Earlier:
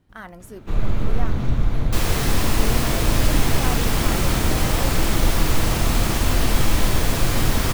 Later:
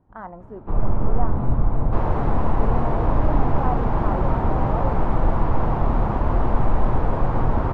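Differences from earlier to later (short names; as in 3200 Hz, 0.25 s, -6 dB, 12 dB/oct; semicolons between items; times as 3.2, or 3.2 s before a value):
second sound: send off; master: add synth low-pass 930 Hz, resonance Q 2.3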